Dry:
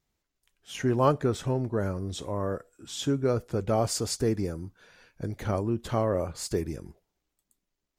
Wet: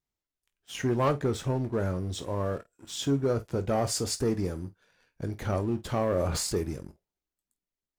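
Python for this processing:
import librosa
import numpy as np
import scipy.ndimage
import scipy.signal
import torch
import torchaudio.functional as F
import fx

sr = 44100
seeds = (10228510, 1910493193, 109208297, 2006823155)

y = fx.leveller(x, sr, passes=2)
y = fx.room_early_taps(y, sr, ms=(22, 50), db=(-12.0, -16.5))
y = fx.sustainer(y, sr, db_per_s=23.0, at=(6.0, 6.52), fade=0.02)
y = y * 10.0 ** (-7.5 / 20.0)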